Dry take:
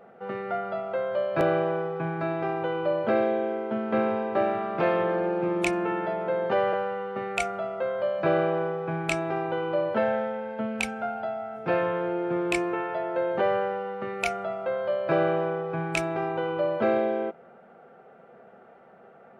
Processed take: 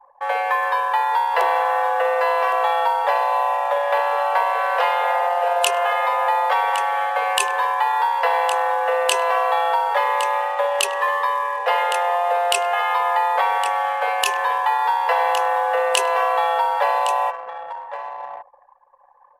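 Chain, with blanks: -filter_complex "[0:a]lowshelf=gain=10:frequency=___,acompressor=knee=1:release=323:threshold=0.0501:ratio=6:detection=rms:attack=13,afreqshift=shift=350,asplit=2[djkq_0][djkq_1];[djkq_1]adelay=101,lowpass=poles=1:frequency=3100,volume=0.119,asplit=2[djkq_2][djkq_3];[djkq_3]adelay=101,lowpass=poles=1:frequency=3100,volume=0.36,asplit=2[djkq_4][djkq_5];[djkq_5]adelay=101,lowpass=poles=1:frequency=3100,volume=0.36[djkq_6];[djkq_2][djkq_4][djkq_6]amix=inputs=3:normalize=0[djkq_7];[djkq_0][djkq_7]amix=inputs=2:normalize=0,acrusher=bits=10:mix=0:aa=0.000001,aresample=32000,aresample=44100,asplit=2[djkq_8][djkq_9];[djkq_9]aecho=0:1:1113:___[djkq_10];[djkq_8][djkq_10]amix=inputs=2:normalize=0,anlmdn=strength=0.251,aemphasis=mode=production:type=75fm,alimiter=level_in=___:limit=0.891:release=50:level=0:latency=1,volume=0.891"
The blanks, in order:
130, 0.266, 3.76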